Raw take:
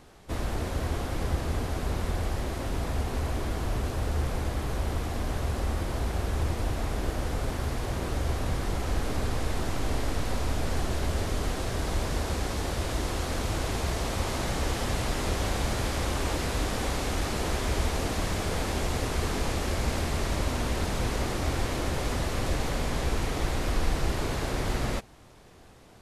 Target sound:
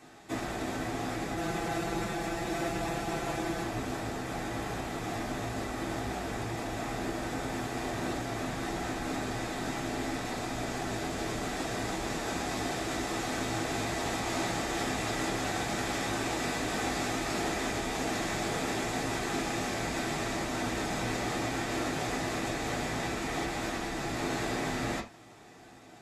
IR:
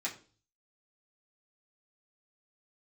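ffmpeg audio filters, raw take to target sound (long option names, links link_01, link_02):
-filter_complex "[0:a]asettb=1/sr,asplit=3[link_01][link_02][link_03];[link_01]atrim=end=1.364[link_04];[link_02]atrim=start=1.36:end=3.63,asetpts=PTS-STARTPTS,afade=type=in:duration=0.004:curve=qsin,afade=type=out:start_time=2.266:duration=0.004:curve=qsin,aecho=1:1:5.9:0.93,atrim=end_sample=100107[link_05];[link_03]atrim=start=3.626[link_06];[link_04][link_05]acrossfade=duration=0.004:curve1=hsin:curve2=qsin[link_07];[link_07][link_06]acrossfade=duration=0.004:curve1=qsin:curve2=hsin,acompressor=threshold=-29dB:ratio=2[link_08];[1:a]atrim=start_sample=2205,atrim=end_sample=4410[link_09];[link_08][link_09]afir=irnorm=-1:irlink=0"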